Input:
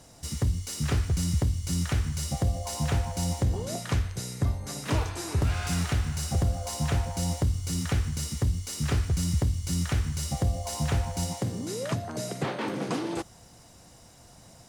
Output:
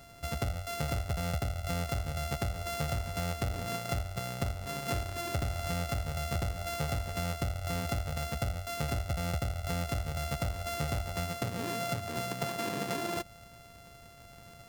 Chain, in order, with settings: sample sorter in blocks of 64 samples; compressor 4:1, threshold -31 dBFS, peak gain reduction 9 dB

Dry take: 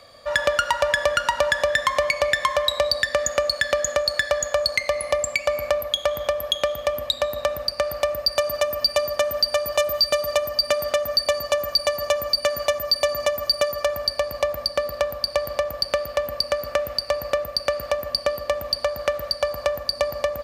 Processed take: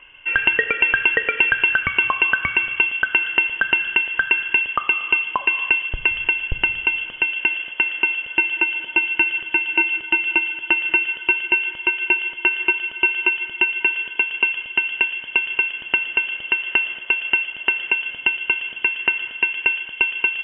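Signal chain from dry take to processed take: low shelf 440 Hz +8.5 dB; reverb RT60 3.5 s, pre-delay 3 ms, DRR 17 dB; inverted band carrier 3300 Hz; gain -6.5 dB

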